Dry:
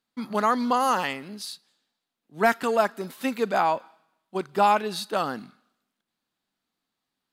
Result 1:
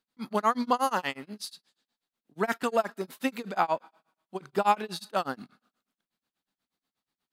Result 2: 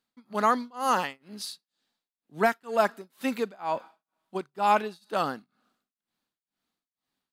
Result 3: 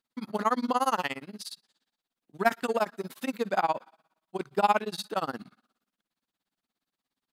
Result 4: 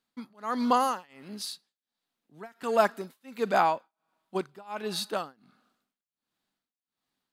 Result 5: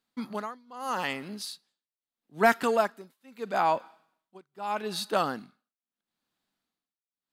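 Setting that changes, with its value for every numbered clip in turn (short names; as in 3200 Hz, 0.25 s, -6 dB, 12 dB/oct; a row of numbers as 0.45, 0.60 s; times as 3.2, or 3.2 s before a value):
tremolo, rate: 8.3, 2.1, 17, 1.4, 0.78 Hz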